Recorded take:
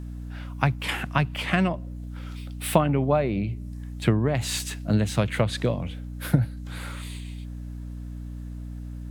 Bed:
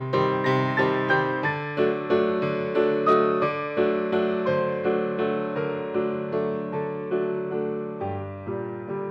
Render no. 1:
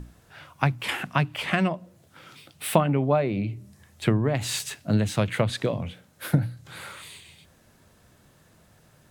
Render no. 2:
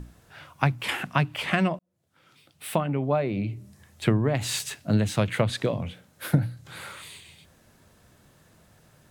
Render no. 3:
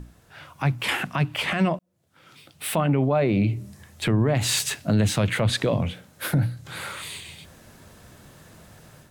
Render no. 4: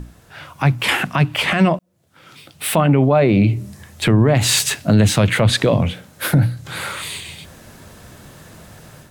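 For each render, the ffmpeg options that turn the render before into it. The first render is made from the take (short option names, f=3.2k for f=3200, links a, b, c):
-af "bandreject=f=60:t=h:w=6,bandreject=f=120:t=h:w=6,bandreject=f=180:t=h:w=6,bandreject=f=240:t=h:w=6,bandreject=f=300:t=h:w=6"
-filter_complex "[0:a]asplit=2[a][b];[a]atrim=end=1.79,asetpts=PTS-STARTPTS,afade=t=out:st=1.786:d=0.004:c=hsin[c];[b]atrim=start=1.79,asetpts=PTS-STARTPTS,afade=t=in:d=1.78[d];[c][d]concat=n=2:v=0:a=1"
-af "dynaudnorm=f=300:g=3:m=9dB,alimiter=limit=-13dB:level=0:latency=1:release=19"
-af "volume=7.5dB"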